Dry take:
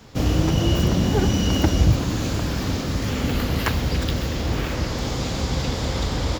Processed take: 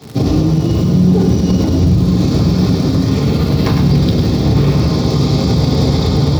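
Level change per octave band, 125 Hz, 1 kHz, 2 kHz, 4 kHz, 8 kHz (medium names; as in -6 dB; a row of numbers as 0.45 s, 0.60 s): +10.5 dB, +4.5 dB, -0.5 dB, +4.0 dB, +0.5 dB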